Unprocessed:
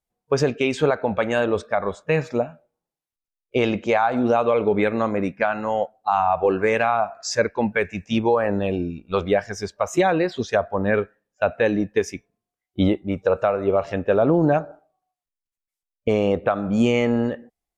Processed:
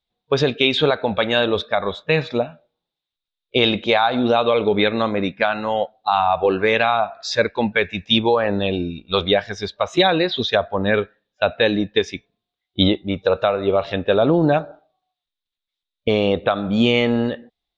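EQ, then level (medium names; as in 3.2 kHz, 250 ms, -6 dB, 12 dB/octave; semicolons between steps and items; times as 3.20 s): resonant low-pass 3.7 kHz, resonance Q 8.2; +1.5 dB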